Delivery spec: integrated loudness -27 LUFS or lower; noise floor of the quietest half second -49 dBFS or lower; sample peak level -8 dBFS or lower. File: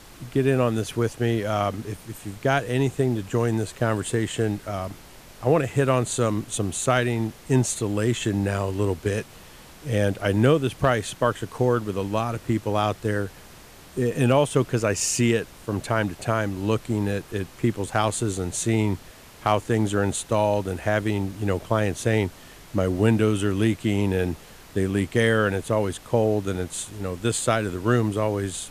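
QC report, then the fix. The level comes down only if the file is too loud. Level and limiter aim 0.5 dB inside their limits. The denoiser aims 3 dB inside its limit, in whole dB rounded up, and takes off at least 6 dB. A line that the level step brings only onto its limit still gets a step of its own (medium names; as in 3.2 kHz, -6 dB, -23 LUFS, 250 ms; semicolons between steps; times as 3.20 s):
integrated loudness -24.5 LUFS: fail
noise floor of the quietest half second -46 dBFS: fail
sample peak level -7.0 dBFS: fail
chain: noise reduction 6 dB, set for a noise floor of -46 dBFS; trim -3 dB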